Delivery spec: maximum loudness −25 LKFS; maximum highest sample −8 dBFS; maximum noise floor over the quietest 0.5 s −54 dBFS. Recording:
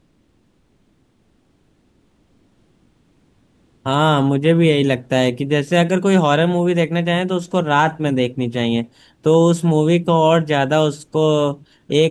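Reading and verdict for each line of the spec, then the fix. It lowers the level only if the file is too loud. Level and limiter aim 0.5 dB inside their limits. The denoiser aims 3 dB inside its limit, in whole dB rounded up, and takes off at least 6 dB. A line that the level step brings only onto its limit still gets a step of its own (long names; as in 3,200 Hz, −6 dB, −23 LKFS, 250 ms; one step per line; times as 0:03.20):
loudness −17.0 LKFS: out of spec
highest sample −3.0 dBFS: out of spec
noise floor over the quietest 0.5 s −59 dBFS: in spec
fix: level −8.5 dB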